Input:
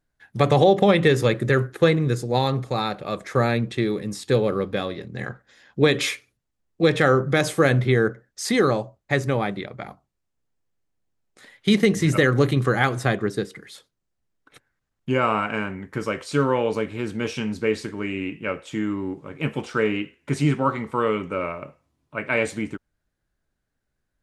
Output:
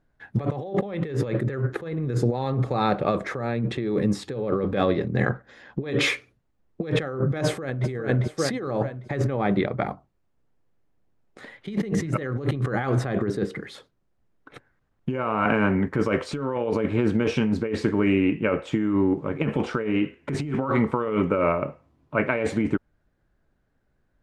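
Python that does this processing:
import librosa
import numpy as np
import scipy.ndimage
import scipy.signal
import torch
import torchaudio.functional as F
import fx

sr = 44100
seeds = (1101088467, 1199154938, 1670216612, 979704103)

y = fx.echo_throw(x, sr, start_s=7.43, length_s=0.44, ms=400, feedback_pct=35, wet_db=-8.0)
y = fx.band_squash(y, sr, depth_pct=70, at=(15.45, 15.89))
y = fx.lowpass(y, sr, hz=1100.0, slope=6)
y = fx.low_shelf(y, sr, hz=170.0, db=-2.5)
y = fx.over_compress(y, sr, threshold_db=-30.0, ratio=-1.0)
y = y * 10.0 ** (5.0 / 20.0)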